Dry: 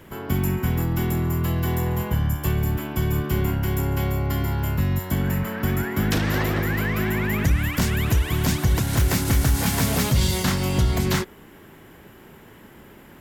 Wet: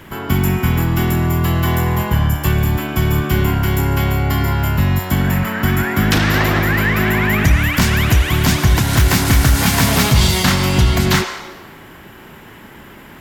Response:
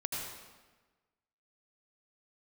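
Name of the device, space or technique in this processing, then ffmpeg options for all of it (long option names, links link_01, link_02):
filtered reverb send: -filter_complex "[0:a]asplit=2[link_01][link_02];[link_02]highpass=frequency=460:width=0.5412,highpass=frequency=460:width=1.3066,lowpass=6400[link_03];[1:a]atrim=start_sample=2205[link_04];[link_03][link_04]afir=irnorm=-1:irlink=0,volume=-5.5dB[link_05];[link_01][link_05]amix=inputs=2:normalize=0,volume=7dB"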